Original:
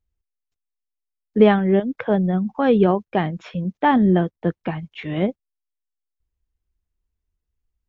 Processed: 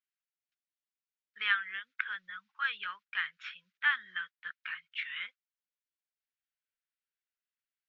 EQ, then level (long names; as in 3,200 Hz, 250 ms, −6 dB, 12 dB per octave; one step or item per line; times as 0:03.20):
elliptic high-pass filter 1,400 Hz, stop band 50 dB
low-pass filter 3,200 Hz 12 dB per octave
+1.0 dB